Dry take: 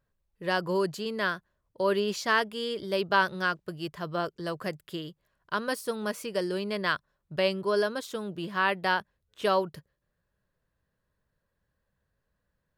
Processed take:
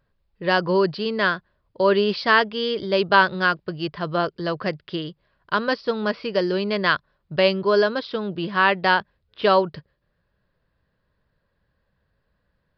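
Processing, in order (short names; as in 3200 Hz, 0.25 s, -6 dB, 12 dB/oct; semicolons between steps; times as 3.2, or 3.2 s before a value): downsampling 11025 Hz; gain +8 dB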